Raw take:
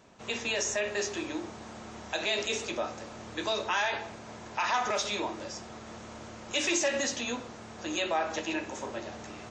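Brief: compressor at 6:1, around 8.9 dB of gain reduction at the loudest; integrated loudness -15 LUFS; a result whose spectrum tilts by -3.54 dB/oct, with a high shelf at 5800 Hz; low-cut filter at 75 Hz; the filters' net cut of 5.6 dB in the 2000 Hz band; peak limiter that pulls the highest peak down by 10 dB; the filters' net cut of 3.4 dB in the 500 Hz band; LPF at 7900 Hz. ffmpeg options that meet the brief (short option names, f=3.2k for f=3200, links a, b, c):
-af "highpass=75,lowpass=7.9k,equalizer=f=500:t=o:g=-4,equalizer=f=2k:t=o:g=-6,highshelf=f=5.8k:g=-8.5,acompressor=threshold=-37dB:ratio=6,volume=30dB,alimiter=limit=-5.5dB:level=0:latency=1"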